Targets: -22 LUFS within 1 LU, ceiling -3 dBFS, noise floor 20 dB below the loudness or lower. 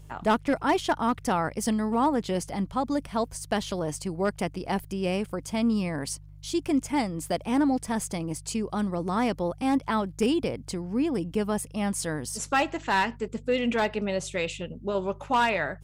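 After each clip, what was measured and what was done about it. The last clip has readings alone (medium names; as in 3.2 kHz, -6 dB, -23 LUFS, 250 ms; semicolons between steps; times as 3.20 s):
clipped samples 0.2%; clipping level -16.0 dBFS; hum 50 Hz; highest harmonic 150 Hz; hum level -44 dBFS; loudness -28.0 LUFS; peak level -16.0 dBFS; loudness target -22.0 LUFS
-> clip repair -16 dBFS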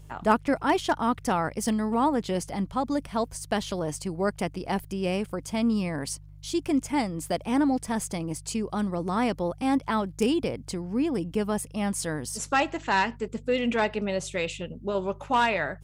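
clipped samples 0.0%; hum 50 Hz; highest harmonic 150 Hz; hum level -44 dBFS
-> de-hum 50 Hz, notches 3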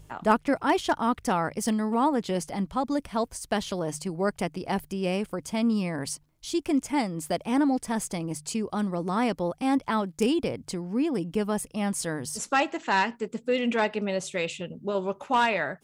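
hum not found; loudness -28.0 LUFS; peak level -7.5 dBFS; loudness target -22.0 LUFS
-> trim +6 dB; peak limiter -3 dBFS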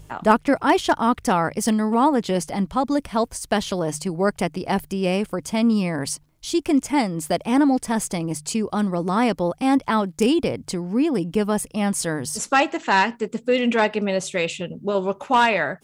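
loudness -22.0 LUFS; peak level -3.0 dBFS; noise floor -53 dBFS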